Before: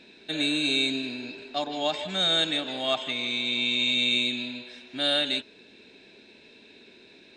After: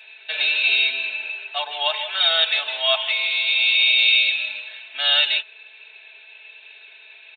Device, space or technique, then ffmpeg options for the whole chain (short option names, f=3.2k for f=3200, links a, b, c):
musical greeting card: -af "aresample=8000,aresample=44100,highpass=f=730:w=0.5412,highpass=f=730:w=1.3066,equalizer=f=2.7k:t=o:w=0.57:g=7,aecho=1:1:4.6:0.73,volume=4.5dB"